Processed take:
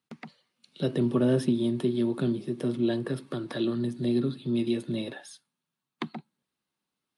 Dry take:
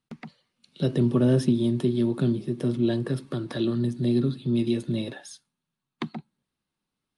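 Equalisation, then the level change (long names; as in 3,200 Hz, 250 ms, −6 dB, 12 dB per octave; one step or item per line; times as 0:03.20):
high-pass filter 240 Hz 6 dB per octave
dynamic equaliser 6,300 Hz, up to −6 dB, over −57 dBFS, Q 1.5
0.0 dB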